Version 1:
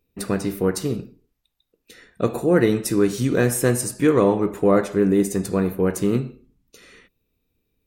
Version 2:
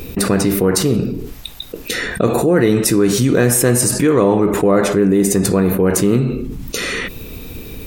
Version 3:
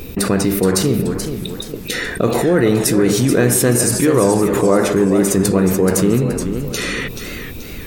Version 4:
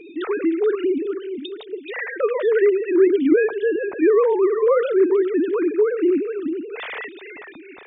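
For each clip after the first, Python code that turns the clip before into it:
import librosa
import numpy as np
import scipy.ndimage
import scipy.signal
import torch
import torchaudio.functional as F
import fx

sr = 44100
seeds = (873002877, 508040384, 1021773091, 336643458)

y1 = fx.env_flatten(x, sr, amount_pct=70)
y1 = y1 * librosa.db_to_amplitude(2.0)
y2 = fx.echo_warbled(y1, sr, ms=428, feedback_pct=42, rate_hz=2.8, cents=117, wet_db=-8.5)
y2 = y2 * librosa.db_to_amplitude(-1.0)
y3 = fx.sine_speech(y2, sr)
y3 = y3 * librosa.db_to_amplitude(-4.0)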